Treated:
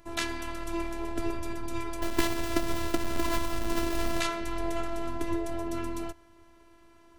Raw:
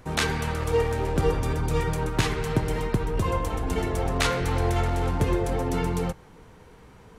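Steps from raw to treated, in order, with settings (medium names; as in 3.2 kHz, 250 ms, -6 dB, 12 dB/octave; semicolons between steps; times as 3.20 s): 2.02–4.20 s: square wave that keeps the level; robot voice 337 Hz; trim -4 dB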